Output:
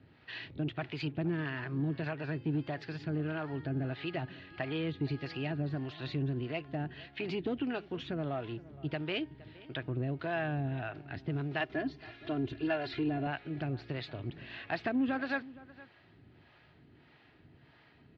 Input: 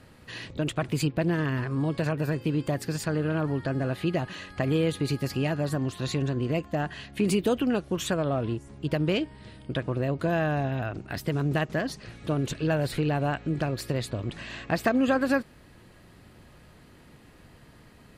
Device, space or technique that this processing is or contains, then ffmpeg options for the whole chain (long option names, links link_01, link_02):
guitar amplifier with harmonic tremolo: -filter_complex "[0:a]acrossover=split=480[link_01][link_02];[link_01]aeval=exprs='val(0)*(1-0.7/2+0.7/2*cos(2*PI*1.6*n/s))':channel_layout=same[link_03];[link_02]aeval=exprs='val(0)*(1-0.7/2-0.7/2*cos(2*PI*1.6*n/s))':channel_layout=same[link_04];[link_03][link_04]amix=inputs=2:normalize=0,asoftclip=type=tanh:threshold=-19dB,lowpass=frequency=6000:width=0.5412,lowpass=frequency=6000:width=1.3066,highpass=100,equalizer=frequency=200:width_type=q:width=4:gain=-9,equalizer=frequency=520:width_type=q:width=4:gain=-9,equalizer=frequency=1100:width_type=q:width=4:gain=-7,lowpass=frequency=3900:width=0.5412,lowpass=frequency=3900:width=1.3066,asettb=1/sr,asplit=3[link_05][link_06][link_07];[link_05]atrim=end=11.604[link_08];[link_06]atrim=start=11.6:end=13.27,asetpts=PTS-STARTPTS,afade=type=in:duration=0.004:curve=qsin,afade=type=out:start_time=1.666:duration=0.004:curve=qsin,aecho=1:1:2.9:0.74,atrim=end_sample=73647[link_09];[link_07]atrim=start=13.266[link_10];[link_08][link_09]acrossfade=duration=0.004:curve1=hsin:curve2=qsin[link_11];[link_11][link_10]acrossfade=duration=0.004:curve1=qsin:curve2=hsin,asplit=2[link_12][link_13];[link_13]adelay=466.5,volume=-19dB,highshelf=frequency=4000:gain=-10.5[link_14];[link_12][link_14]amix=inputs=2:normalize=0,volume=-1.5dB"